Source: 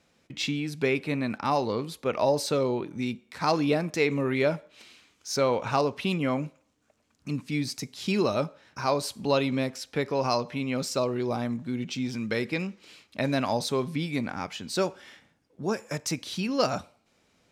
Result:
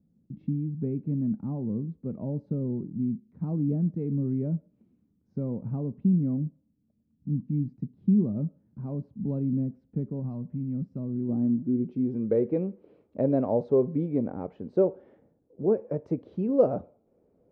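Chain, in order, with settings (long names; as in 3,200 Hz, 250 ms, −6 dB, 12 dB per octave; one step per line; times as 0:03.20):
low-pass filter sweep 200 Hz → 480 Hz, 0:10.92–0:12.35
0:10.19–0:11.29: dynamic equaliser 420 Hz, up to −6 dB, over −43 dBFS, Q 0.98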